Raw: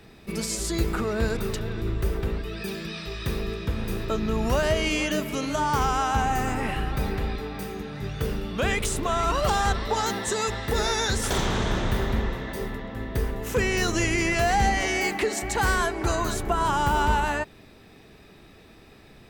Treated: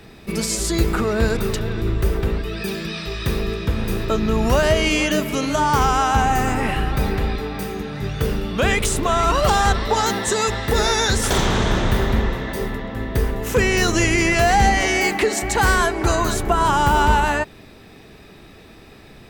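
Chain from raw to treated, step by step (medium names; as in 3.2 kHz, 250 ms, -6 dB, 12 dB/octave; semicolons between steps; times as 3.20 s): 9.34–11.91 s: crackle 56 per s -51 dBFS; trim +6.5 dB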